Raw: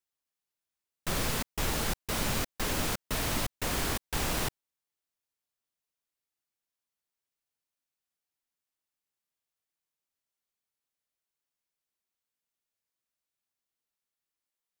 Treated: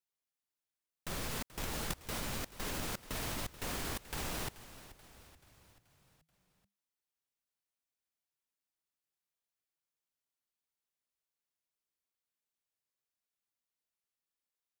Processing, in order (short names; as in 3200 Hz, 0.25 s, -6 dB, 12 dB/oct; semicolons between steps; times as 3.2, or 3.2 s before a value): level quantiser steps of 14 dB; frequency-shifting echo 0.432 s, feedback 53%, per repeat -40 Hz, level -15.5 dB; gain +3.5 dB